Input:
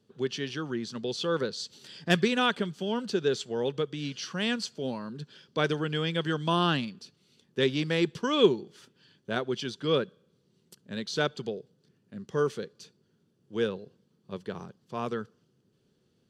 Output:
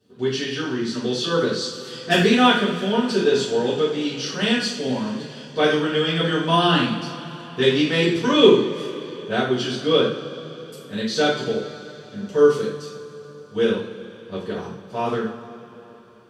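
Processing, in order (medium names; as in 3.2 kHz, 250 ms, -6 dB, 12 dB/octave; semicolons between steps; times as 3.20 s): two-slope reverb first 0.51 s, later 4 s, from -18 dB, DRR -10 dB; trim -1.5 dB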